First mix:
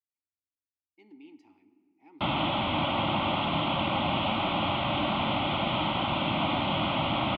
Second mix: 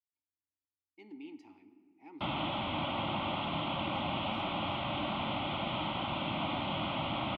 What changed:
speech +3.5 dB
background −7.0 dB

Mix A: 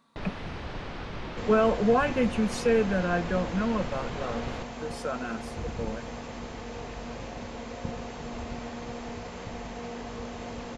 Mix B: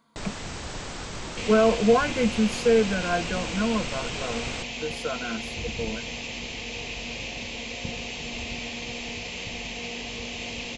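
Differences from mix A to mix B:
speech: add EQ curve with evenly spaced ripples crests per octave 1.8, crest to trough 9 dB
first sound: remove high-frequency loss of the air 280 metres
second sound: add high shelf with overshoot 1,900 Hz +10 dB, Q 3

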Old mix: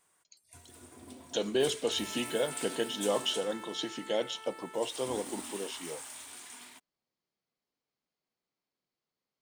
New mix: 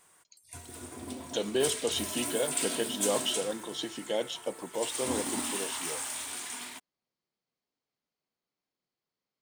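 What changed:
first sound +9.0 dB
second sound −8.0 dB

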